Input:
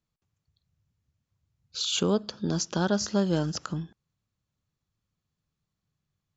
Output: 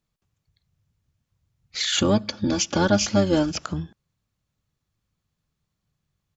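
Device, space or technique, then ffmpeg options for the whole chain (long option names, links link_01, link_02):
octave pedal: -filter_complex "[0:a]asplit=3[link_01][link_02][link_03];[link_01]afade=type=out:start_time=1.97:duration=0.02[link_04];[link_02]aecho=1:1:3.5:0.89,afade=type=in:start_time=1.97:duration=0.02,afade=type=out:start_time=3.5:duration=0.02[link_05];[link_03]afade=type=in:start_time=3.5:duration=0.02[link_06];[link_04][link_05][link_06]amix=inputs=3:normalize=0,asplit=2[link_07][link_08];[link_08]asetrate=22050,aresample=44100,atempo=2,volume=-8dB[link_09];[link_07][link_09]amix=inputs=2:normalize=0,volume=4dB"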